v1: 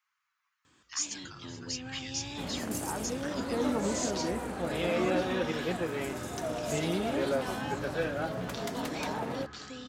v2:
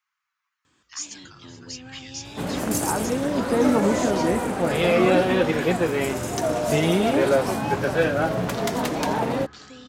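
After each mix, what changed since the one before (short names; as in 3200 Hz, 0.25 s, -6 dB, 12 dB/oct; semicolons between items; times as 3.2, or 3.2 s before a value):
second sound +11.0 dB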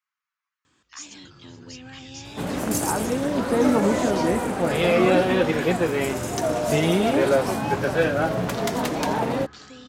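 speech -7.0 dB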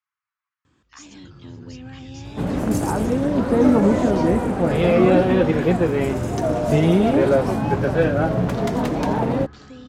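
master: add tilt -2.5 dB/oct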